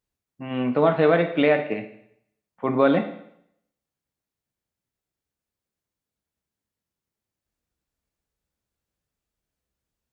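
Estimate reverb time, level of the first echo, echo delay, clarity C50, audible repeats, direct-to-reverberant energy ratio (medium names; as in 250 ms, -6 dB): 0.70 s, no echo, no echo, 11.0 dB, no echo, 7.0 dB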